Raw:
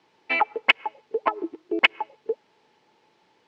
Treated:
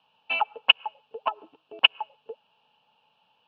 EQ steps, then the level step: high-pass 100 Hz; resonant low-pass 2.8 kHz, resonance Q 9.5; static phaser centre 850 Hz, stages 4; -4.0 dB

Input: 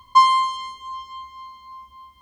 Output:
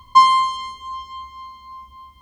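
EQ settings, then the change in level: bass shelf 230 Hz +7 dB; band-stop 1.6 kHz, Q 13; +2.0 dB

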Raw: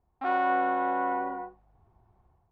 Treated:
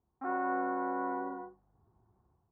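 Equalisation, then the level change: high-pass 200 Hz 6 dB/octave; Bessel low-pass 970 Hz, order 8; peaking EQ 670 Hz -9.5 dB 1.1 oct; +2.0 dB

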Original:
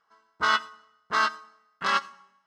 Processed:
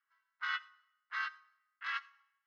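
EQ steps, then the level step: ladder high-pass 1.6 kHz, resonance 40%; distance through air 120 m; treble shelf 2.9 kHz -12 dB; +1.0 dB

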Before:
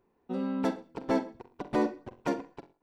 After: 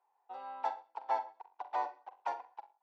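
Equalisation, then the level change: ladder high-pass 780 Hz, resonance 80%; low-pass 5.1 kHz 12 dB/octave; +3.0 dB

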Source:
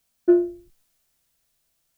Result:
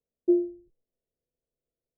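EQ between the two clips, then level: four-pole ladder low-pass 530 Hz, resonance 65%; 0.0 dB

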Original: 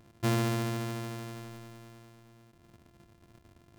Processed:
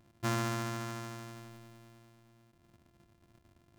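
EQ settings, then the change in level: band-stop 450 Hz, Q 12; dynamic bell 6.4 kHz, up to +6 dB, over -56 dBFS, Q 1.4; dynamic bell 1.3 kHz, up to +8 dB, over -49 dBFS, Q 1.1; -6.0 dB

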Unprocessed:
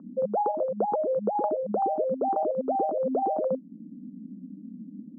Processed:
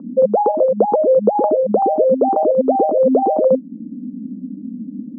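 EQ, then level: ten-band graphic EQ 125 Hz +5 dB, 250 Hz +11 dB, 500 Hz +11 dB, 1 kHz +6 dB; 0.0 dB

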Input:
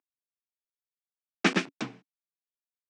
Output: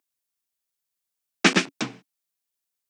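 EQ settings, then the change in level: treble shelf 4.1 kHz +9 dB; +5.0 dB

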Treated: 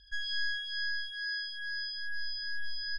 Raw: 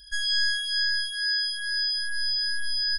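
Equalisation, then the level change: distance through air 110 m; peaking EQ 1.1 kHz -4 dB 0.29 oct; treble shelf 5.7 kHz -8 dB; -4.5 dB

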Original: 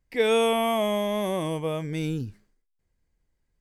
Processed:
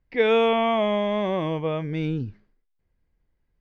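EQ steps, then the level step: low-pass 5.8 kHz 12 dB/octave; dynamic bell 2 kHz, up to +3 dB, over -37 dBFS, Q 0.75; distance through air 200 m; +2.5 dB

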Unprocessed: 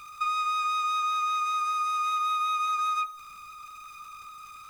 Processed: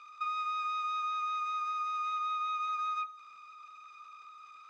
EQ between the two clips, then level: band-pass 430–6500 Hz; distance through air 100 m; -6.0 dB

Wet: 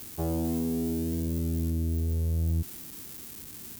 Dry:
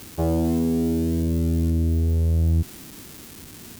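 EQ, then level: treble shelf 7.8 kHz +10.5 dB; band-stop 600 Hz, Q 12; -7.5 dB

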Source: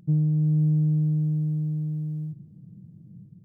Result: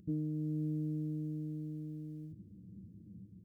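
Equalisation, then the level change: peaking EQ 70 Hz +13 dB 0.53 oct; peaking EQ 160 Hz +7.5 dB 2.2 oct; static phaser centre 350 Hz, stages 4; -3.5 dB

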